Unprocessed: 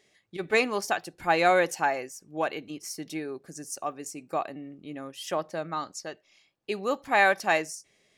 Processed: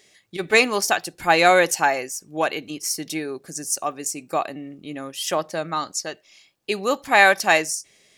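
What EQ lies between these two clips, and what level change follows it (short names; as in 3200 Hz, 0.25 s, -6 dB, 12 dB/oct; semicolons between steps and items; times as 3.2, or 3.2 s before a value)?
high shelf 3000 Hz +8.5 dB; +5.5 dB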